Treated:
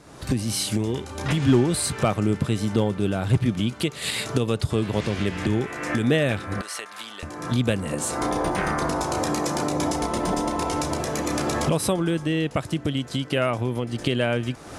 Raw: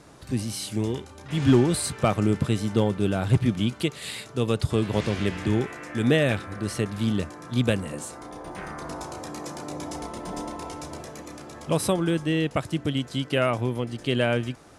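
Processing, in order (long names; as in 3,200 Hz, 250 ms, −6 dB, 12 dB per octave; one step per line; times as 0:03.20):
camcorder AGC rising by 40 dB per second
0:06.61–0:07.23: Chebyshev high-pass filter 990 Hz, order 2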